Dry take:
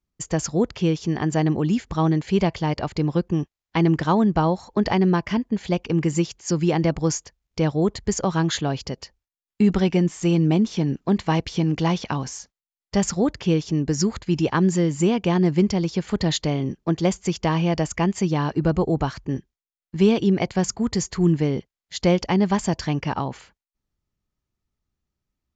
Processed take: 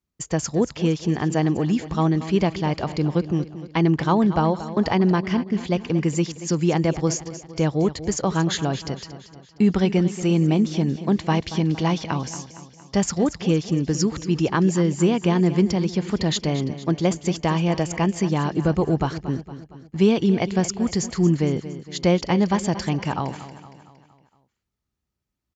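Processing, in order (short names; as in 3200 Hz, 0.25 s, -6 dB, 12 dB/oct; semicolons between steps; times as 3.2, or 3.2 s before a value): HPF 50 Hz; on a send: feedback echo 0.231 s, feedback 51%, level -13.5 dB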